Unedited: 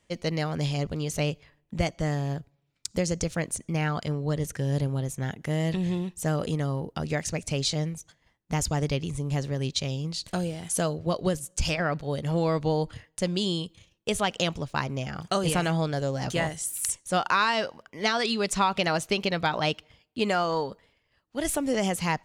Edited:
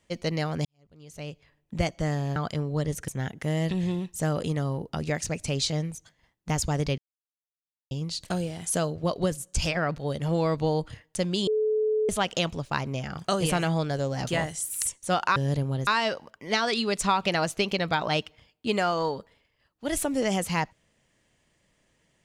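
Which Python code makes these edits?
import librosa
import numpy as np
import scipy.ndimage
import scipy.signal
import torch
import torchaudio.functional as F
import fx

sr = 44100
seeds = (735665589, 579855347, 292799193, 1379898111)

y = fx.edit(x, sr, fx.fade_in_span(start_s=0.65, length_s=1.1, curve='qua'),
    fx.cut(start_s=2.36, length_s=1.52),
    fx.move(start_s=4.6, length_s=0.51, to_s=17.39),
    fx.silence(start_s=9.01, length_s=0.93),
    fx.bleep(start_s=13.5, length_s=0.62, hz=431.0, db=-21.5), tone=tone)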